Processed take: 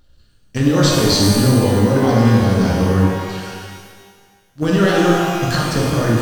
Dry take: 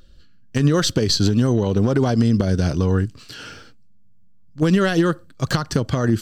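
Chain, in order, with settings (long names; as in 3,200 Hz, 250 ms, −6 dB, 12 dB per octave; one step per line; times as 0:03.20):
mu-law and A-law mismatch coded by A
reverb with rising layers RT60 1.6 s, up +12 semitones, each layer −8 dB, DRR −4 dB
level −1 dB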